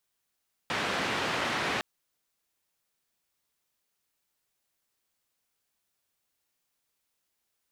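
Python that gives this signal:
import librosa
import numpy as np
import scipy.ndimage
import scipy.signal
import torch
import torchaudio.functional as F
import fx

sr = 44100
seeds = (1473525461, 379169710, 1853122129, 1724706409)

y = fx.band_noise(sr, seeds[0], length_s=1.11, low_hz=120.0, high_hz=2300.0, level_db=-30.5)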